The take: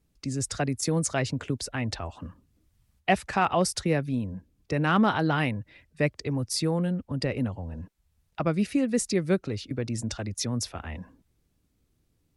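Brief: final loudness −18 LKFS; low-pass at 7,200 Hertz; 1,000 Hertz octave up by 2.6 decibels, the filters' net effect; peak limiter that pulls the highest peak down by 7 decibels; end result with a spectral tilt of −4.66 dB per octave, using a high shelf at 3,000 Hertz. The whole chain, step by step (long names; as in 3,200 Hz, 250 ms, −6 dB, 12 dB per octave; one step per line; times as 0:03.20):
low-pass filter 7,200 Hz
parametric band 1,000 Hz +3 dB
high-shelf EQ 3,000 Hz +5 dB
level +10.5 dB
brickwall limiter −4.5 dBFS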